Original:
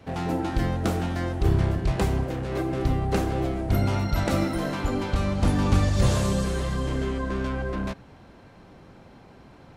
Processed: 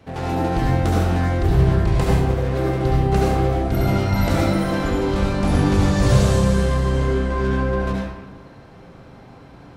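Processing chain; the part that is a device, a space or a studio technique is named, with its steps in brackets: bathroom (reverb RT60 1.1 s, pre-delay 64 ms, DRR -4 dB)

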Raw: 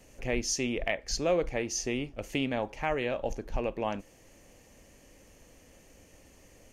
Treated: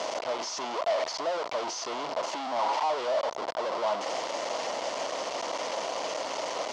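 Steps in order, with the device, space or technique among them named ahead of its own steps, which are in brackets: 2.22–2.9 graphic EQ 125/250/500/1000/2000 Hz -10/+7/-6/+11/-5 dB; home computer beeper (infinite clipping; speaker cabinet 580–5100 Hz, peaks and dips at 650 Hz +9 dB, 980 Hz +7 dB, 1700 Hz -8 dB, 2500 Hz -7 dB, 3800 Hz -4 dB); gain +5 dB

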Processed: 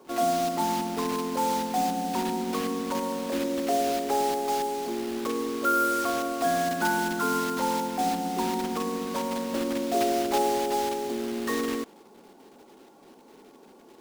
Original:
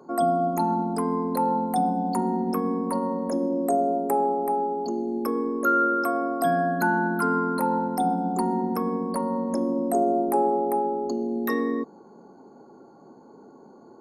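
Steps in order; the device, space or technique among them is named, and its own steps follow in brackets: early digital voice recorder (BPF 210–3400 Hz; block floating point 3-bit); gain -2.5 dB

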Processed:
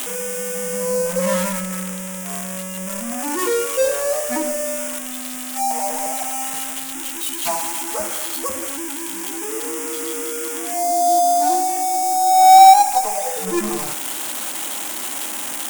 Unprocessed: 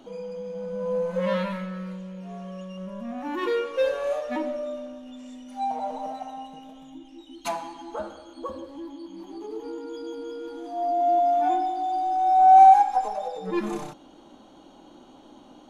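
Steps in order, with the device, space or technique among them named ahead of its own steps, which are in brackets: budget class-D amplifier (switching dead time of 0.12 ms; switching spikes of -13.5 dBFS); gain +5 dB

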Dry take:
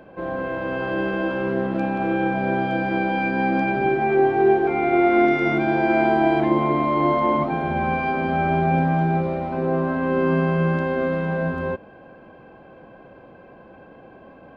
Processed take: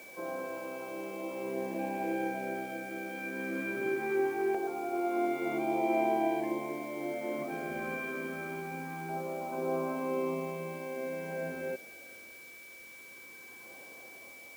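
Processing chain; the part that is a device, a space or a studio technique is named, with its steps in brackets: shortwave radio (BPF 300–2900 Hz; tremolo 0.51 Hz, depth 49%; LFO notch saw down 0.22 Hz 600–2300 Hz; whine 2300 Hz -41 dBFS; white noise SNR 22 dB); gain -8 dB

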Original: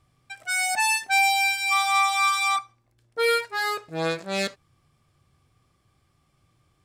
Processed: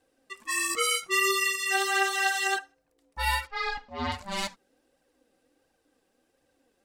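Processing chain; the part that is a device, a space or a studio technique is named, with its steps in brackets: alien voice (ring modulator 400 Hz; flange 1.4 Hz, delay 1 ms, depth 4.5 ms, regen +27%); 3.47–4.12 LPF 5000 Hz 24 dB/oct; high shelf 7000 Hz +6 dB; gain +1.5 dB

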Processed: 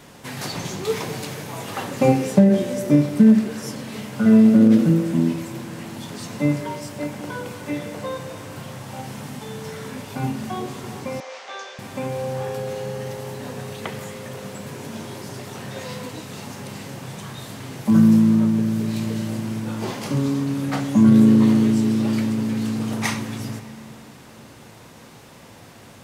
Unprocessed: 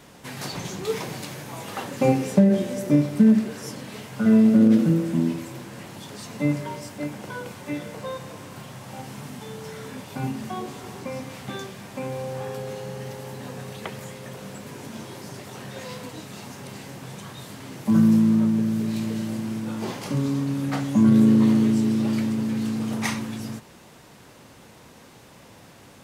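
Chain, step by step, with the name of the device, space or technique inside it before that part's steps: compressed reverb return (on a send at -8 dB: reverb RT60 2.8 s, pre-delay 5 ms + compressor, threshold -29 dBFS, peak gain reduction 17.5 dB); 11.2–11.79 on the sum: elliptic band-pass 520–6200 Hz, stop band 60 dB; gain +3 dB

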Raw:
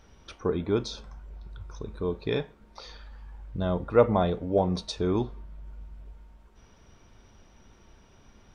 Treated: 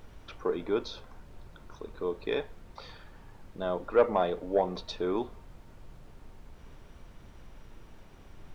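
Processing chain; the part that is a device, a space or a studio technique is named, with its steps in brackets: aircraft cabin announcement (BPF 350–3600 Hz; soft clip -12.5 dBFS, distortion -18 dB; brown noise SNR 13 dB)

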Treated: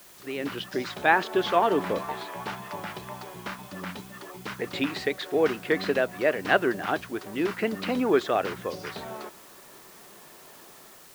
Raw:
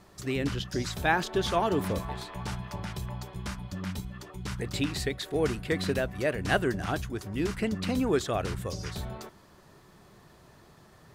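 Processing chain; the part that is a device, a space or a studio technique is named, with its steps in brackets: dictaphone (BPF 310–3100 Hz; AGC gain up to 8 dB; wow and flutter; white noise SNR 23 dB); gain -2 dB

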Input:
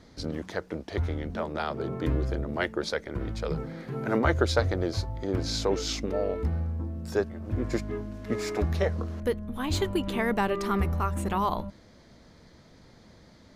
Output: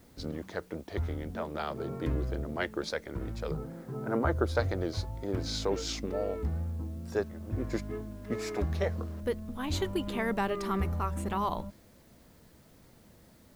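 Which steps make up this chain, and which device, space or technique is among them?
3.51–4.55 band shelf 3900 Hz -10 dB 2.4 oct; plain cassette with noise reduction switched in (mismatched tape noise reduction decoder only; wow and flutter; white noise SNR 33 dB); gain -4 dB

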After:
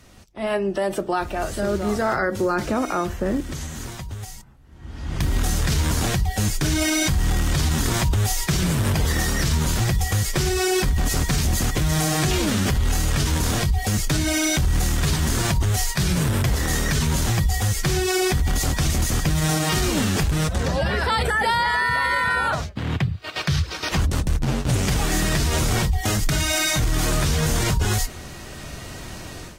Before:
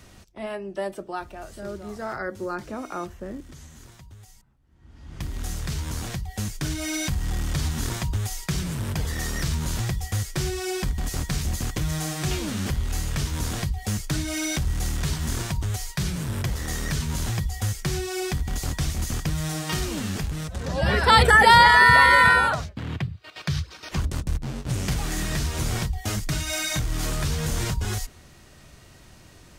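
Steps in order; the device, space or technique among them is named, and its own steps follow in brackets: low-bitrate web radio (AGC gain up to 15 dB; limiter -12 dBFS, peak gain reduction 11.5 dB; gain -1.5 dB; AAC 48 kbps 44100 Hz)

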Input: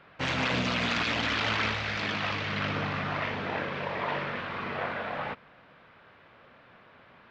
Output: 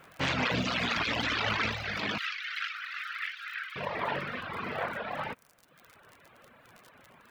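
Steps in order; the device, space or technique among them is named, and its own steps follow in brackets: vinyl LP (wow and flutter; crackle 46/s -39 dBFS; white noise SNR 41 dB); reverb removal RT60 1.1 s; 2.18–3.76 steep high-pass 1300 Hz 72 dB/oct; gain +1 dB

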